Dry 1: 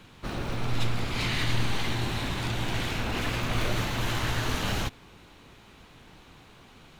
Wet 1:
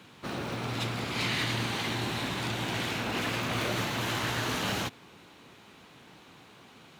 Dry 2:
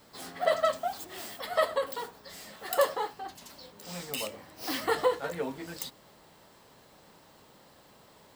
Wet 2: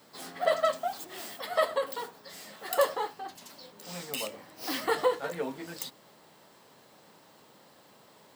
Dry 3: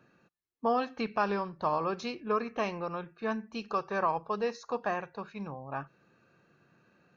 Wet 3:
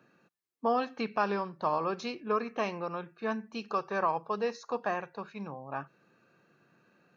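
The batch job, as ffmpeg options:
-af "highpass=140"

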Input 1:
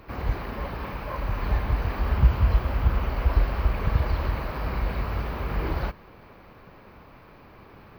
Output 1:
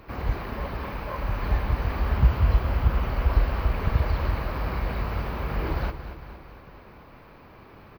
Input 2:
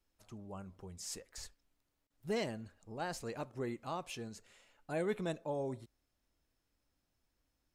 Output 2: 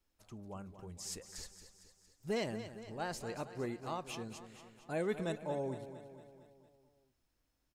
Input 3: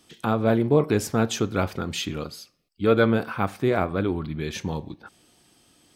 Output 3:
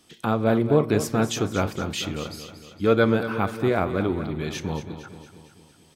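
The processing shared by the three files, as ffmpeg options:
-af "aecho=1:1:229|458|687|916|1145|1374:0.266|0.149|0.0834|0.0467|0.0262|0.0147"

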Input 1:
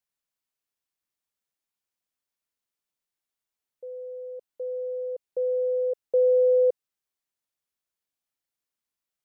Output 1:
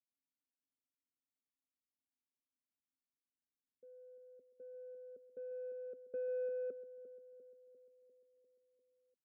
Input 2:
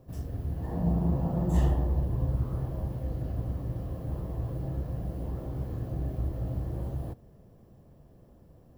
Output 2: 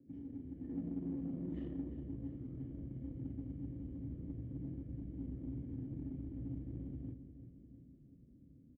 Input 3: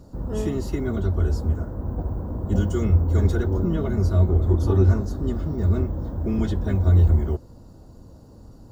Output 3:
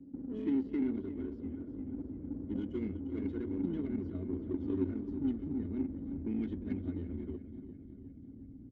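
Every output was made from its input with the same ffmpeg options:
-filter_complex "[0:a]acrossover=split=290[s0][s1];[s0]acompressor=threshold=0.02:ratio=10[s2];[s2][s1]amix=inputs=2:normalize=0,aecho=1:1:348|696|1044|1392|1740|2088|2436:0.282|0.166|0.0981|0.0579|0.0342|0.0201|0.0119,asubboost=boost=5:cutoff=130,asplit=3[s3][s4][s5];[s3]bandpass=f=270:t=q:w=8,volume=1[s6];[s4]bandpass=f=2290:t=q:w=8,volume=0.501[s7];[s5]bandpass=f=3010:t=q:w=8,volume=0.355[s8];[s6][s7][s8]amix=inputs=3:normalize=0,crystalizer=i=2:c=0,adynamicsmooth=sensitivity=5:basefreq=760,volume=2.24"

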